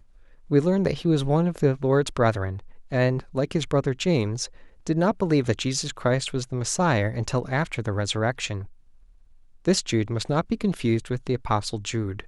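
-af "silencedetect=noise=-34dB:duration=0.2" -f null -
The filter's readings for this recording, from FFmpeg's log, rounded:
silence_start: 0.00
silence_end: 0.51 | silence_duration: 0.51
silence_start: 2.59
silence_end: 2.92 | silence_duration: 0.32
silence_start: 4.46
silence_end: 4.87 | silence_duration: 0.41
silence_start: 8.65
silence_end: 9.65 | silence_duration: 1.01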